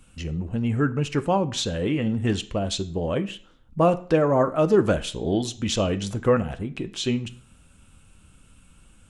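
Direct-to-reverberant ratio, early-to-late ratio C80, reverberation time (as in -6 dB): 9.0 dB, 21.0 dB, 0.50 s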